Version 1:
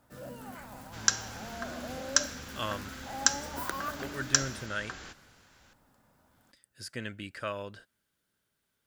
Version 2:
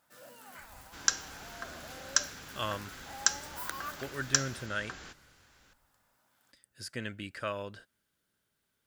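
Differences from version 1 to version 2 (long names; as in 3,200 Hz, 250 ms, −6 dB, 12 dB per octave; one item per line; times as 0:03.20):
first sound: add high-pass filter 1,500 Hz 6 dB per octave
second sound: send −8.0 dB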